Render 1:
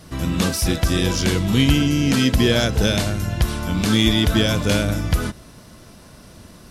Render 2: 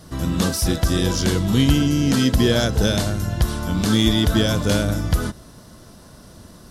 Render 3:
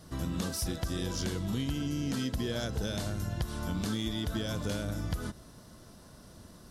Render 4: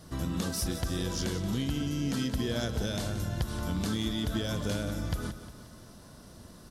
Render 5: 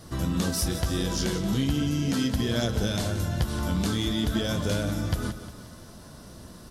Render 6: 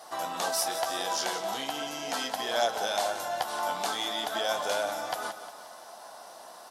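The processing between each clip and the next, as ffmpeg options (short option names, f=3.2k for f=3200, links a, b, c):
-af "equalizer=f=2.4k:w=2.4:g=-7.5"
-af "acompressor=threshold=-21dB:ratio=6,volume=-8.5dB"
-af "aecho=1:1:178|356|534|712|890:0.251|0.128|0.0653|0.0333|0.017,volume=1.5dB"
-af "flanger=delay=8.7:depth=7.7:regen=-48:speed=0.38:shape=triangular,volume=9dB"
-af "highpass=f=760:t=q:w=4.9"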